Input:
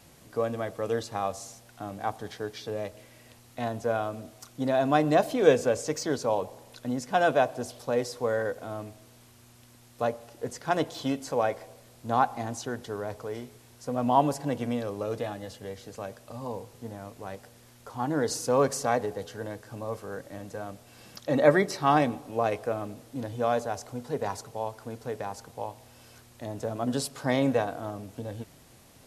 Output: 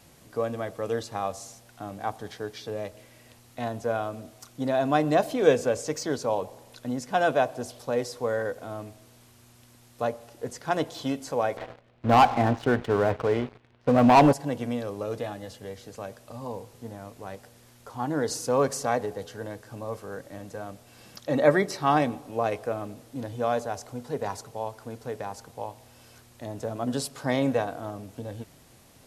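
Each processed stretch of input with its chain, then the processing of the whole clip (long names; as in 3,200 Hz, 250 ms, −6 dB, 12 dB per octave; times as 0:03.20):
0:11.57–0:14.33: low-pass filter 3,000 Hz 24 dB per octave + leveller curve on the samples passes 3
whole clip: no processing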